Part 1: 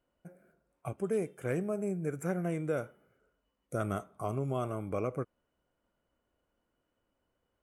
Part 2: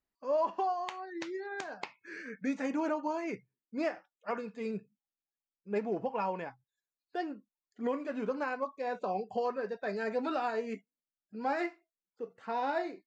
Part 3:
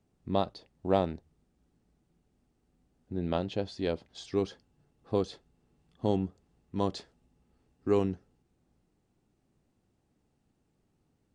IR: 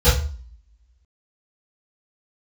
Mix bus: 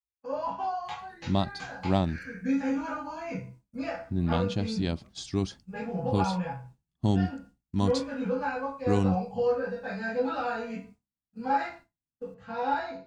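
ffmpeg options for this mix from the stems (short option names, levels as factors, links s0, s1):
-filter_complex "[0:a]acompressor=threshold=0.0158:ratio=6,volume=0.133[s0];[1:a]volume=0.251,asplit=3[s1][s2][s3];[s2]volume=0.631[s4];[2:a]bass=f=250:g=8,treble=f=4000:g=9,adelay=1000,volume=1.12[s5];[s3]apad=whole_len=336096[s6];[s0][s6]sidechaincompress=threshold=0.00251:ratio=8:attack=16:release=390[s7];[3:a]atrim=start_sample=2205[s8];[s4][s8]afir=irnorm=-1:irlink=0[s9];[s7][s1][s5][s9]amix=inputs=4:normalize=0,agate=range=0.0224:threshold=0.00708:ratio=3:detection=peak,equalizer=f=470:w=3.1:g=-12.5"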